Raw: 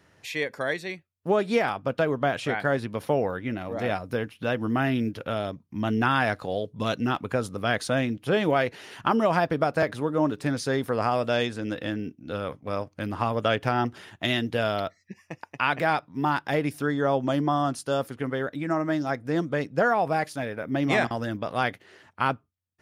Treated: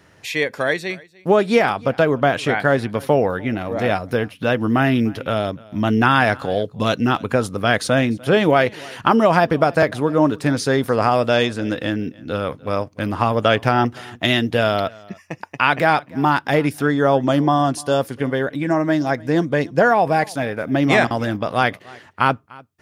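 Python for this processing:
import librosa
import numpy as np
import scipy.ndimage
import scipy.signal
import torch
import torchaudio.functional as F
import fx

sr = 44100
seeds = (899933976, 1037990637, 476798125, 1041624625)

y = fx.notch(x, sr, hz=1300.0, q=8.1, at=(17.47, 20.25))
y = y + 10.0 ** (-23.5 / 20.0) * np.pad(y, (int(297 * sr / 1000.0), 0))[:len(y)]
y = y * 10.0 ** (8.0 / 20.0)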